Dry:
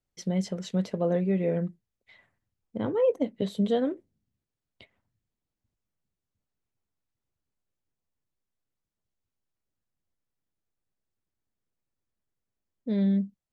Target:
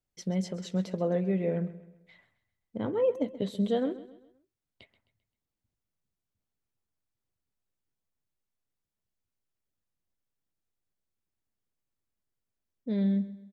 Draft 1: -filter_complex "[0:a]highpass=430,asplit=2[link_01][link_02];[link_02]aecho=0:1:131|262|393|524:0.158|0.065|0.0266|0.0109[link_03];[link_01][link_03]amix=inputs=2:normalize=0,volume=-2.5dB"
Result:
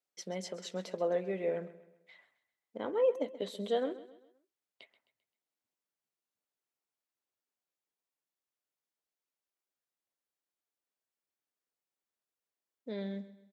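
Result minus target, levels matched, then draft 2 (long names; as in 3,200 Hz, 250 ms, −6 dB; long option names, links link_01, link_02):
500 Hz band +3.0 dB
-filter_complex "[0:a]asplit=2[link_01][link_02];[link_02]aecho=0:1:131|262|393|524:0.158|0.065|0.0266|0.0109[link_03];[link_01][link_03]amix=inputs=2:normalize=0,volume=-2.5dB"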